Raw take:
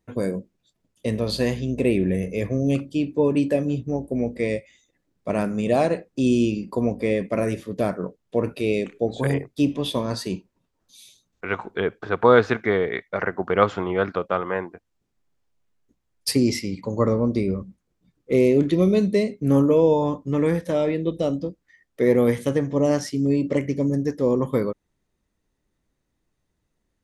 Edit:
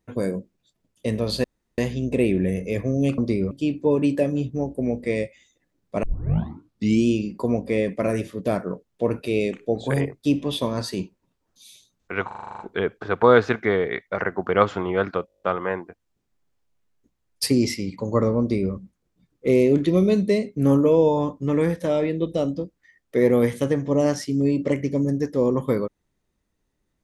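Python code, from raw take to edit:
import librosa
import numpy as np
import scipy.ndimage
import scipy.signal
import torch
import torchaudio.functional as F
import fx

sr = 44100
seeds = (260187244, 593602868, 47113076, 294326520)

y = fx.edit(x, sr, fx.insert_room_tone(at_s=1.44, length_s=0.34),
    fx.tape_start(start_s=5.36, length_s=1.03),
    fx.stutter(start_s=11.6, slice_s=0.04, count=9),
    fx.stutter(start_s=14.27, slice_s=0.02, count=9),
    fx.duplicate(start_s=17.25, length_s=0.33, to_s=2.84), tone=tone)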